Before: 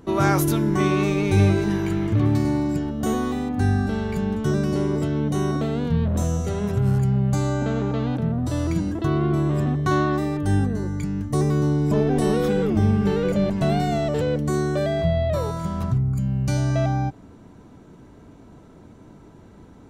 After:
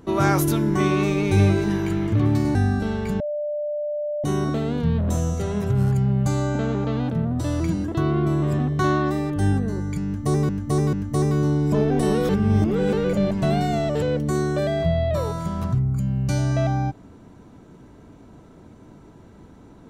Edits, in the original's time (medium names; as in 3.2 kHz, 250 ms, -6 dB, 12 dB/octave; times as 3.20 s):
2.55–3.62 s: delete
4.27–5.31 s: bleep 593 Hz -23.5 dBFS
11.12–11.56 s: loop, 3 plays
12.48–13.12 s: reverse